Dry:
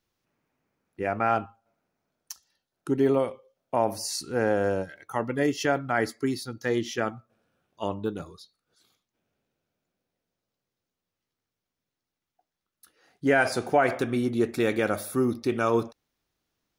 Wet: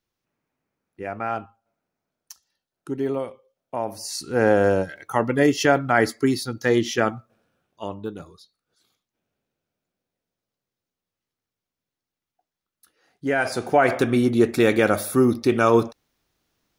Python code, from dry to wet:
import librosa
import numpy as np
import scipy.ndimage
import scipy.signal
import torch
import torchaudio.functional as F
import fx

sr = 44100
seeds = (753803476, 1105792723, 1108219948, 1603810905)

y = fx.gain(x, sr, db=fx.line((3.93, -3.0), (4.47, 7.0), (7.15, 7.0), (7.85, -1.5), (13.3, -1.5), (14.03, 7.0)))